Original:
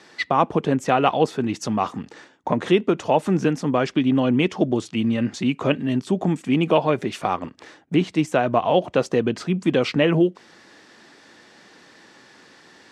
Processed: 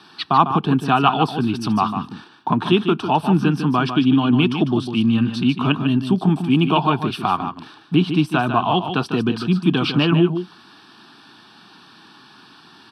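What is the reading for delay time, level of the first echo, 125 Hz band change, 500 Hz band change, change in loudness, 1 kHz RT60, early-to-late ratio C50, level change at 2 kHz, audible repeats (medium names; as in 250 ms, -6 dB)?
150 ms, -8.5 dB, +6.0 dB, -3.5 dB, +3.0 dB, no reverb, no reverb, +2.0 dB, 1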